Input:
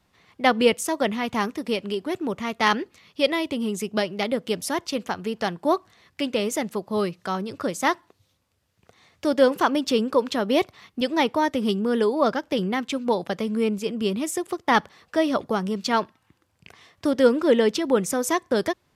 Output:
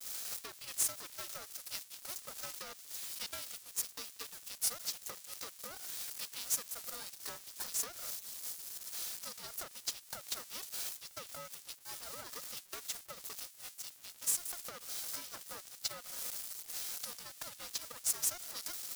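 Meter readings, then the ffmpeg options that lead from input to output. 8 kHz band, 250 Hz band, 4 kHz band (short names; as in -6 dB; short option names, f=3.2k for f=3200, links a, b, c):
-0.5 dB, -38.5 dB, -12.0 dB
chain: -af "aeval=exprs='val(0)+0.5*0.0501*sgn(val(0))':c=same,alimiter=limit=-15dB:level=0:latency=1:release=135,highpass=f=880:t=q:w=5.2,agate=range=-33dB:threshold=-21dB:ratio=3:detection=peak,highshelf=f=3.7k:t=q:w=1.5:g=7,acompressor=threshold=-25dB:ratio=8,aderivative,acrusher=bits=7:mix=0:aa=0.000001,aeval=exprs='val(0)*sgn(sin(2*PI*360*n/s))':c=same,volume=-5dB"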